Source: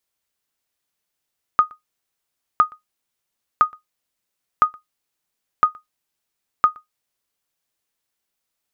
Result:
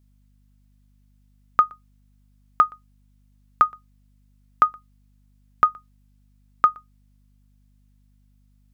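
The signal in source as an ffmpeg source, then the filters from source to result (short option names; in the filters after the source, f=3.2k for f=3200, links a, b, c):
-f lavfi -i "aevalsrc='0.596*(sin(2*PI*1240*mod(t,1.01))*exp(-6.91*mod(t,1.01)/0.14)+0.0398*sin(2*PI*1240*max(mod(t,1.01)-0.12,0))*exp(-6.91*max(mod(t,1.01)-0.12,0)/0.14))':d=6.06:s=44100"
-af "aeval=exprs='val(0)+0.00126*(sin(2*PI*50*n/s)+sin(2*PI*2*50*n/s)/2+sin(2*PI*3*50*n/s)/3+sin(2*PI*4*50*n/s)/4+sin(2*PI*5*50*n/s)/5)':c=same"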